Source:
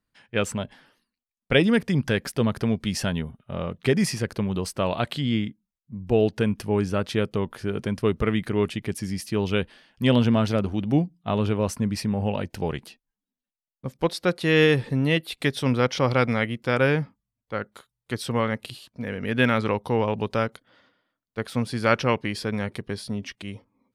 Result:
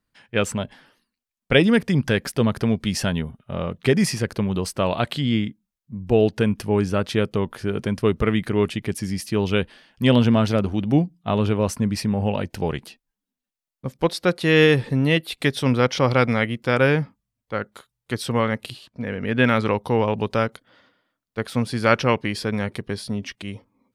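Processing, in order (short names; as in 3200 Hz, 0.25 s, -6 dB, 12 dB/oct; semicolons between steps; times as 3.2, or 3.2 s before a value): 18.72–19.45 high shelf 8100 Hz -> 5600 Hz -11.5 dB; gain +3 dB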